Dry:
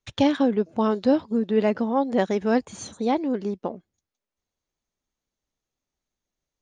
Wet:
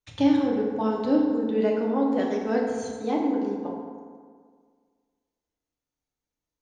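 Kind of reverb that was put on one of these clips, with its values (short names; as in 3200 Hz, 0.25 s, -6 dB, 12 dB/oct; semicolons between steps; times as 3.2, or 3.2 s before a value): FDN reverb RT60 1.8 s, low-frequency decay 1×, high-frequency decay 0.5×, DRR -2.5 dB; gain -8 dB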